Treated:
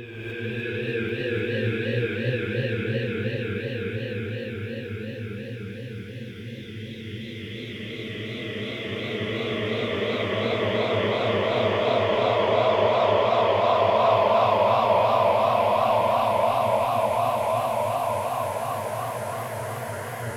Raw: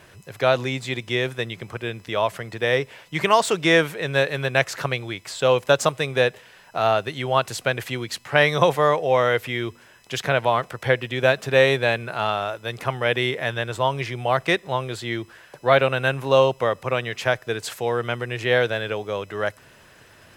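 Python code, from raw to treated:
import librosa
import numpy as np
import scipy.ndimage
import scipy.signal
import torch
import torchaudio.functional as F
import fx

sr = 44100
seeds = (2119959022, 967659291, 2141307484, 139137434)

p1 = fx.bin_expand(x, sr, power=1.5)
p2 = fx.notch(p1, sr, hz=3600.0, q=16.0)
p3 = fx.level_steps(p2, sr, step_db=20)
p4 = p2 + F.gain(torch.from_numpy(p3), -1.0).numpy()
p5 = 10.0 ** (-18.5 / 20.0) * np.tanh(p4 / 10.0 ** (-18.5 / 20.0))
p6 = fx.paulstretch(p5, sr, seeds[0], factor=39.0, window_s=0.25, from_s=1.87)
p7 = fx.wow_flutter(p6, sr, seeds[1], rate_hz=2.1, depth_cents=76.0)
p8 = p7 + fx.echo_single(p7, sr, ms=1090, db=-5.0, dry=0)
p9 = fx.rev_gated(p8, sr, seeds[2], gate_ms=330, shape='rising', drr_db=-7.0)
p10 = fx.echo_warbled(p9, sr, ms=303, feedback_pct=80, rate_hz=2.8, cents=126, wet_db=-3.0)
y = F.gain(torch.from_numpy(p10), -6.5).numpy()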